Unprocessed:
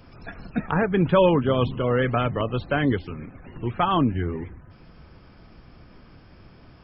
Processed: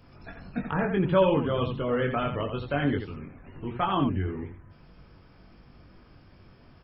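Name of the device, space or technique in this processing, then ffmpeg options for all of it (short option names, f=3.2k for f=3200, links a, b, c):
slapback doubling: -filter_complex "[0:a]asplit=3[a][b][c];[b]adelay=21,volume=-4dB[d];[c]adelay=86,volume=-7dB[e];[a][d][e]amix=inputs=3:normalize=0,volume=-6.5dB"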